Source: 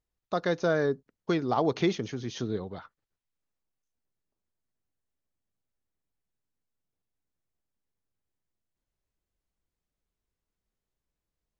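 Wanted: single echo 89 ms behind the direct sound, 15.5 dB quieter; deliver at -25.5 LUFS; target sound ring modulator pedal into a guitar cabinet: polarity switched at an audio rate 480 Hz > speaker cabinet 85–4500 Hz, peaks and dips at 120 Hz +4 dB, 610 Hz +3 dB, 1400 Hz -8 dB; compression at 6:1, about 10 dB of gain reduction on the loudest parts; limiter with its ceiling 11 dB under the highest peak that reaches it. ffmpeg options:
-af "acompressor=threshold=-32dB:ratio=6,alimiter=level_in=7dB:limit=-24dB:level=0:latency=1,volume=-7dB,aecho=1:1:89:0.168,aeval=exprs='val(0)*sgn(sin(2*PI*480*n/s))':c=same,highpass=85,equalizer=f=120:t=q:w=4:g=4,equalizer=f=610:t=q:w=4:g=3,equalizer=f=1.4k:t=q:w=4:g=-8,lowpass=f=4.5k:w=0.5412,lowpass=f=4.5k:w=1.3066,volume=16.5dB"

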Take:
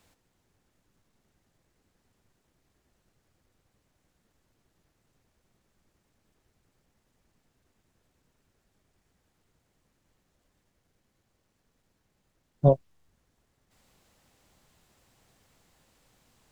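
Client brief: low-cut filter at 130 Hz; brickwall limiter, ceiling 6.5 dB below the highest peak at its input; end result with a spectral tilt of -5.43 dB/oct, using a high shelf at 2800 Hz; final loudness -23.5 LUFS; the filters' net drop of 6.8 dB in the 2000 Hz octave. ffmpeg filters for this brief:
-af "highpass=130,equalizer=f=2k:t=o:g=-7.5,highshelf=f=2.8k:g=-4.5,volume=7dB,alimiter=limit=-9dB:level=0:latency=1"

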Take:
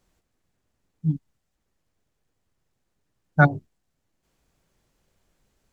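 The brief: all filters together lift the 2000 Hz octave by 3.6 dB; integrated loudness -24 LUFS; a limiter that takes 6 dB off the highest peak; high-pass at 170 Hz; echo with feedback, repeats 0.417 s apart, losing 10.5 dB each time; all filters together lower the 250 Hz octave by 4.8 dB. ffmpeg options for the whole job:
-af "highpass=170,equalizer=f=250:t=o:g=-4,equalizer=f=2k:t=o:g=6.5,alimiter=limit=-6.5dB:level=0:latency=1,aecho=1:1:417|834|1251:0.299|0.0896|0.0269,volume=4dB"

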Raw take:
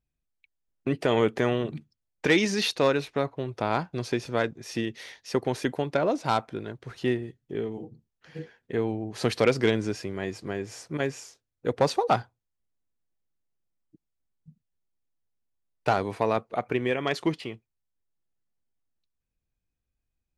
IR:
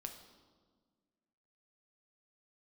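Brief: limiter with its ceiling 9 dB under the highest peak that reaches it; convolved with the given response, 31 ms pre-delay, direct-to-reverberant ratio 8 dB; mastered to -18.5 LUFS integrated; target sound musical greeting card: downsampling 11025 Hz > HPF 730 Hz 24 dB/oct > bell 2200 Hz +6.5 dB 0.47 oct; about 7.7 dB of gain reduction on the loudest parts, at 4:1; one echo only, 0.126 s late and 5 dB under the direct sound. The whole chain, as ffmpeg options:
-filter_complex "[0:a]acompressor=threshold=-26dB:ratio=4,alimiter=limit=-21dB:level=0:latency=1,aecho=1:1:126:0.562,asplit=2[a][b];[1:a]atrim=start_sample=2205,adelay=31[c];[b][c]afir=irnorm=-1:irlink=0,volume=-4.5dB[d];[a][d]amix=inputs=2:normalize=0,aresample=11025,aresample=44100,highpass=f=730:w=0.5412,highpass=f=730:w=1.3066,equalizer=f=2.2k:t=o:w=0.47:g=6.5,volume=18.5dB"

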